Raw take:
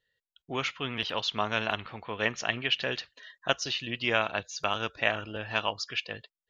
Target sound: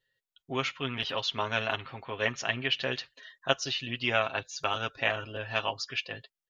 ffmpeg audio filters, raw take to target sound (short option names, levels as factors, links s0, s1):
-af "aecho=1:1:7.5:0.61,volume=0.794"